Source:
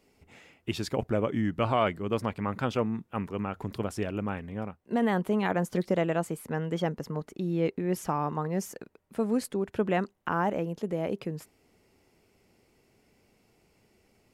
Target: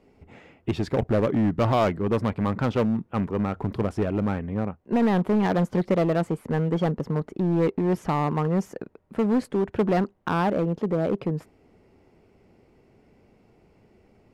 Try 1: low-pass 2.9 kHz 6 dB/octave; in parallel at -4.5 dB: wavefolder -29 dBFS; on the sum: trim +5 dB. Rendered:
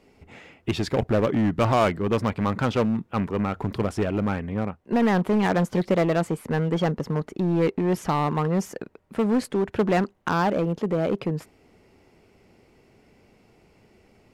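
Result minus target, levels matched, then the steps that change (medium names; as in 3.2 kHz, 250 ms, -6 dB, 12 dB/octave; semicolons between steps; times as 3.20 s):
4 kHz band +4.0 dB
change: low-pass 980 Hz 6 dB/octave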